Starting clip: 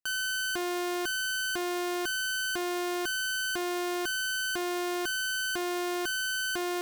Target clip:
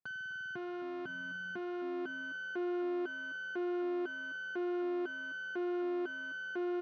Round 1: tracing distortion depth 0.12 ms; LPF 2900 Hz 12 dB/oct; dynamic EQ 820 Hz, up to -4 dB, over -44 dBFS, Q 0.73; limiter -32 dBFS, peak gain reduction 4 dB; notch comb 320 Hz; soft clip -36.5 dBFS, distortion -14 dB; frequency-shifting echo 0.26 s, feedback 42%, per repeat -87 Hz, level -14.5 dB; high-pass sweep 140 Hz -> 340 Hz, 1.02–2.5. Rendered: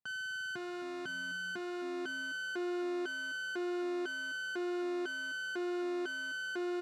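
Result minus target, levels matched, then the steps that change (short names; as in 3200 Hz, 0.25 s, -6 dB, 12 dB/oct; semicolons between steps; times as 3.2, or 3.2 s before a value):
4000 Hz band +8.0 dB
change: LPF 1200 Hz 12 dB/oct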